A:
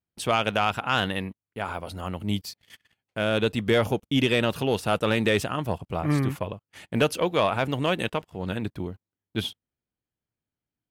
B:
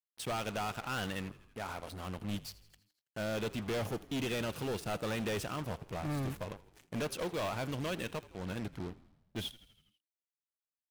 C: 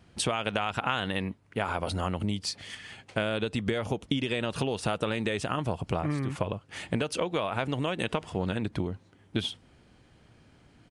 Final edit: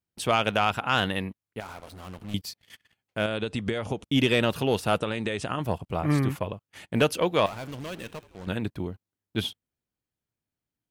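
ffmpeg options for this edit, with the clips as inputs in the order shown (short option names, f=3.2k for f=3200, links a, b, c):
-filter_complex "[1:a]asplit=2[a][b];[2:a]asplit=2[c][d];[0:a]asplit=5[e][f][g][h][i];[e]atrim=end=1.602[j];[a]atrim=start=1.598:end=2.342[k];[f]atrim=start=2.338:end=3.262[l];[c]atrim=start=3.258:end=4.042[m];[g]atrim=start=4.038:end=4.992[n];[d]atrim=start=4.988:end=5.602[o];[h]atrim=start=5.598:end=7.462[p];[b]atrim=start=7.458:end=8.472[q];[i]atrim=start=8.468[r];[j][k]acrossfade=d=0.004:c1=hsin:c2=hsin[s];[s][l]acrossfade=d=0.004:c1=hsin:c2=hsin[t];[t][m]acrossfade=d=0.004:c1=hsin:c2=hsin[u];[u][n]acrossfade=d=0.004:c1=hsin:c2=hsin[v];[v][o]acrossfade=d=0.004:c1=hsin:c2=hsin[w];[w][p]acrossfade=d=0.004:c1=hsin:c2=hsin[x];[x][q]acrossfade=d=0.004:c1=hsin:c2=hsin[y];[y][r]acrossfade=d=0.004:c1=hsin:c2=hsin"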